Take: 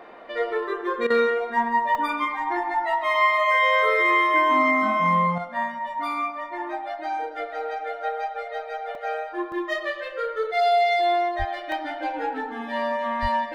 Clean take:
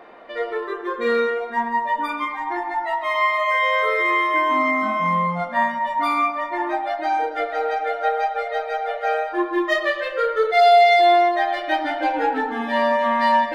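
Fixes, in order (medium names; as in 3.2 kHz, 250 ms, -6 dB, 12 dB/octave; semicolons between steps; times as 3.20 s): 11.38–11.50 s: high-pass 140 Hz 24 dB/octave; 13.21–13.33 s: high-pass 140 Hz 24 dB/octave; interpolate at 1.95/8.95/9.52/11.72 s, 1.7 ms; interpolate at 1.07 s, 31 ms; trim 0 dB, from 5.38 s +7 dB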